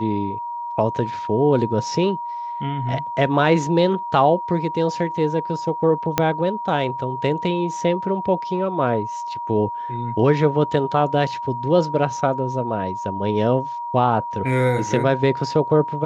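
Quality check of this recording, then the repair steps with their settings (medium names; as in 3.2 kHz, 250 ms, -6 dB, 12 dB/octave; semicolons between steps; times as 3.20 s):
whine 950 Hz -26 dBFS
6.18 s: pop -2 dBFS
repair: de-click; band-stop 950 Hz, Q 30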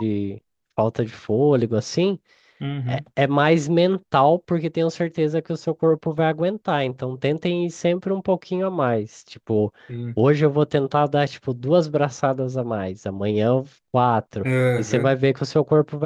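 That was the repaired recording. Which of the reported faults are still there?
6.18 s: pop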